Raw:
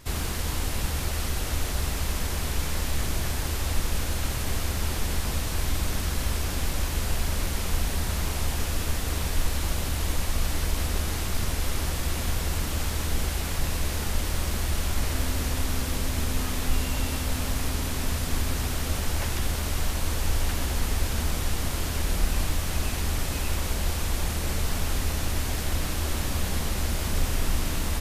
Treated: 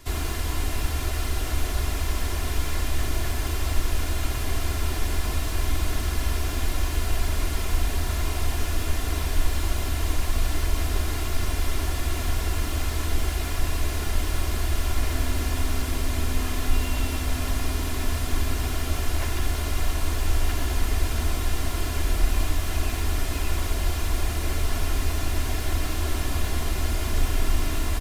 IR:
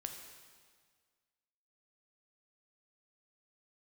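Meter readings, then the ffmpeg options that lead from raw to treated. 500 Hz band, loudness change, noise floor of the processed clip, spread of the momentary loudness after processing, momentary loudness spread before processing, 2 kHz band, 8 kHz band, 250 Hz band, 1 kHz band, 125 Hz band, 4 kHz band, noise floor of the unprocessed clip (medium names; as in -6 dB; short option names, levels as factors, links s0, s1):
+1.0 dB, +1.0 dB, -29 dBFS, 1 LU, 1 LU, +1.0 dB, -2.0 dB, +0.5 dB, +1.5 dB, +1.5 dB, -0.5 dB, -30 dBFS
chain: -filter_complex "[0:a]aecho=1:1:2.9:0.56,acrossover=split=220|3400[s0][s1][s2];[s2]asoftclip=type=tanh:threshold=0.0178[s3];[s0][s1][s3]amix=inputs=3:normalize=0"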